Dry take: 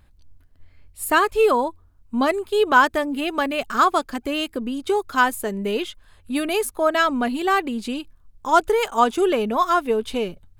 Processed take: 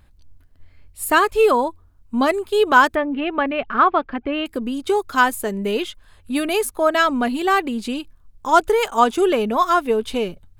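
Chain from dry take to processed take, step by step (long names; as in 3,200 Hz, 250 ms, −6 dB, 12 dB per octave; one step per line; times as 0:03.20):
0:02.95–0:04.46: low-pass filter 2,800 Hz 24 dB per octave
level +2 dB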